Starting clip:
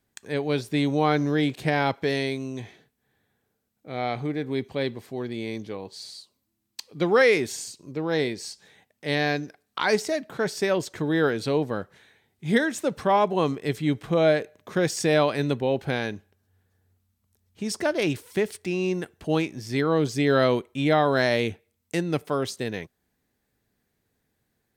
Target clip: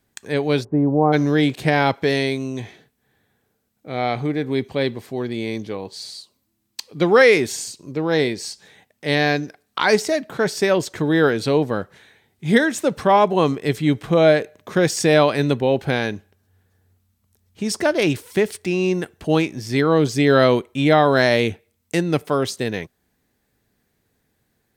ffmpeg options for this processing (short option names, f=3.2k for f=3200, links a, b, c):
-filter_complex "[0:a]asplit=3[a][b][c];[a]afade=t=out:st=0.63:d=0.02[d];[b]lowpass=f=1k:w=0.5412,lowpass=f=1k:w=1.3066,afade=t=in:st=0.63:d=0.02,afade=t=out:st=1.12:d=0.02[e];[c]afade=t=in:st=1.12:d=0.02[f];[d][e][f]amix=inputs=3:normalize=0,volume=6dB"